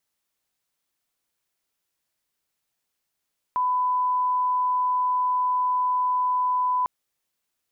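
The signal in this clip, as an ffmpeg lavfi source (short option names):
-f lavfi -i "sine=f=1000:d=3.3:r=44100,volume=-1.94dB"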